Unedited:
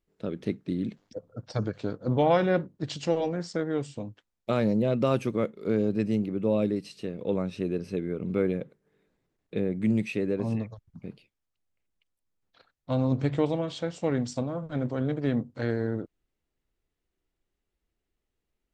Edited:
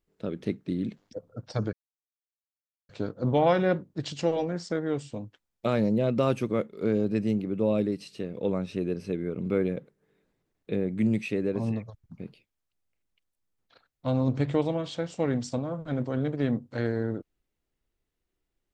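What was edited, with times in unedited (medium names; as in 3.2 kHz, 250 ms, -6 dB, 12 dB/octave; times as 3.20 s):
1.73 s: insert silence 1.16 s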